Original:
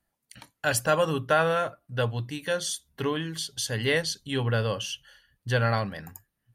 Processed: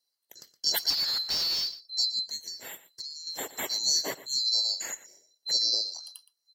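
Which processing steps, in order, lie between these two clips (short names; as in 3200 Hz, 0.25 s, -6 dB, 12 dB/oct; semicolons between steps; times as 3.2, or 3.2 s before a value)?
band-swap scrambler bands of 4000 Hz; HPF 270 Hz 6 dB/oct; notch 2400 Hz, Q 6.4; 0.9–1.78 overdrive pedal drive 25 dB, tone 1100 Hz, clips at -8.5 dBFS; 2.36–3.27 compressor 10:1, threshold -36 dBFS, peak gain reduction 14 dB; 5.53–6.05 high shelf 11000 Hz -9.5 dB; echo 0.118 s -16 dB; gain -1.5 dB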